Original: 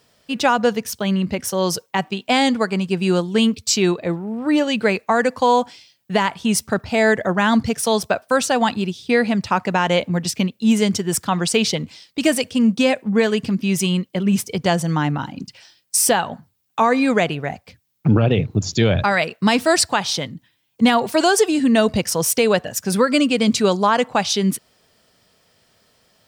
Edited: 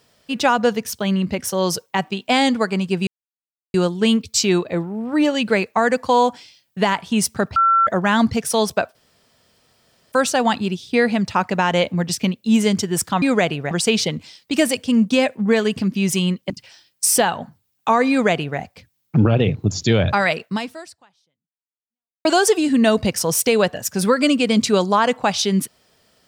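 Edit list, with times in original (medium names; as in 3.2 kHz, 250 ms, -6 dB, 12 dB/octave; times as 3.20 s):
3.07 s: insert silence 0.67 s
6.89–7.20 s: bleep 1.35 kHz -11.5 dBFS
8.28 s: insert room tone 1.17 s
14.17–15.41 s: delete
17.01–17.50 s: copy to 11.38 s
19.34–21.16 s: fade out exponential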